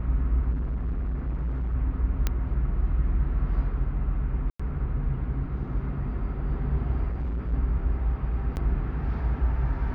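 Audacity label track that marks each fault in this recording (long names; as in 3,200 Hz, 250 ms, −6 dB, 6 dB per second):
0.510000	1.750000	clipping −25 dBFS
2.270000	2.270000	click −11 dBFS
4.500000	4.590000	drop-out 95 ms
7.100000	7.540000	clipping −26 dBFS
8.560000	8.570000	drop-out 9.5 ms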